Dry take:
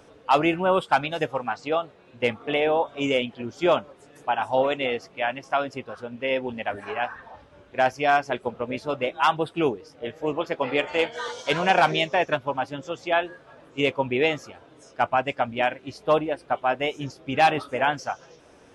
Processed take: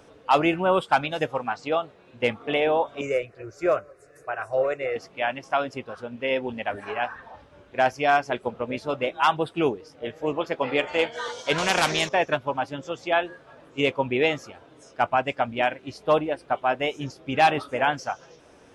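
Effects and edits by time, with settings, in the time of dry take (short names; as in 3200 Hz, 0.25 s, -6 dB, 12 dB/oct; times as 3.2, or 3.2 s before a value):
3.01–4.96 fixed phaser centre 880 Hz, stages 6
11.58–12.09 spectral compressor 2:1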